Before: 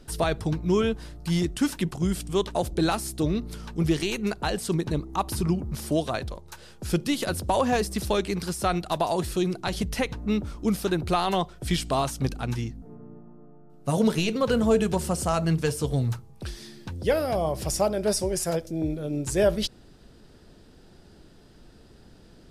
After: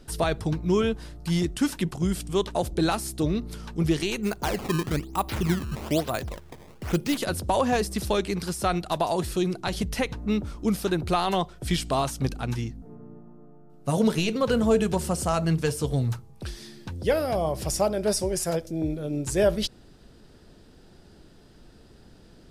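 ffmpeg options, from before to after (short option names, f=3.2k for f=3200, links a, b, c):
-filter_complex "[0:a]asplit=3[a][b][c];[a]afade=t=out:st=4.22:d=0.02[d];[b]acrusher=samples=18:mix=1:aa=0.000001:lfo=1:lforange=28.8:lforate=1.1,afade=t=in:st=4.22:d=0.02,afade=t=out:st=7.16:d=0.02[e];[c]afade=t=in:st=7.16:d=0.02[f];[d][e][f]amix=inputs=3:normalize=0"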